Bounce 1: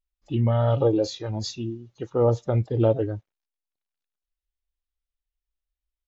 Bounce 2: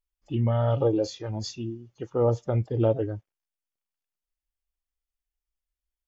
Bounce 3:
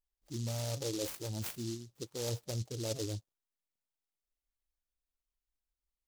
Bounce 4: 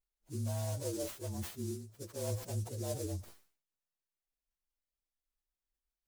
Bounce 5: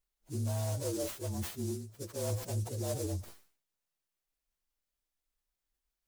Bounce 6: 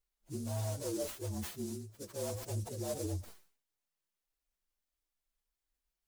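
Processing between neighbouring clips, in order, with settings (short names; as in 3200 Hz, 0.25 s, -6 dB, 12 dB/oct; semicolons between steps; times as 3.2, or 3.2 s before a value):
notch 3900 Hz, Q 6.5; gain -2.5 dB
reverse; compressor 6:1, threshold -32 dBFS, peak gain reduction 13.5 dB; reverse; noise-modulated delay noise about 5100 Hz, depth 0.18 ms; gain -3 dB
inharmonic rescaling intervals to 112%; sustainer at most 120 dB/s; gain +1 dB
soft clip -30 dBFS, distortion -21 dB; gain +4 dB
flange 1.6 Hz, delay 2.2 ms, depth 3.9 ms, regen -29%; gain +1.5 dB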